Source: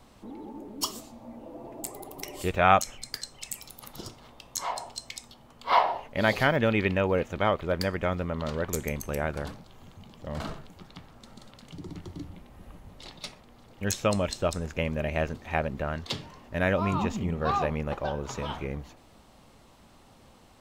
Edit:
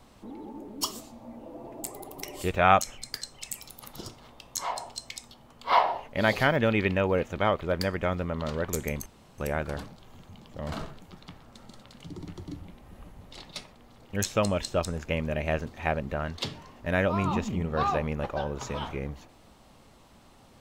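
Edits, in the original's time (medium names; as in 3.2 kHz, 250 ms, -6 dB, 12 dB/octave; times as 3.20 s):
9.06 s: insert room tone 0.32 s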